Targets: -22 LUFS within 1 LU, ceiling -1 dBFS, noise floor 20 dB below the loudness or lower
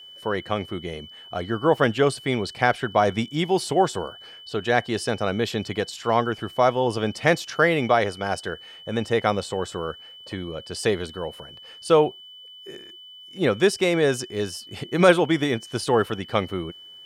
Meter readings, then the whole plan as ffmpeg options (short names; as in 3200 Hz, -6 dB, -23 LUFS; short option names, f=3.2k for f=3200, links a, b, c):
steady tone 3000 Hz; tone level -42 dBFS; loudness -23.5 LUFS; peak -3.5 dBFS; loudness target -22.0 LUFS
-> -af "bandreject=f=3k:w=30"
-af "volume=1.5dB"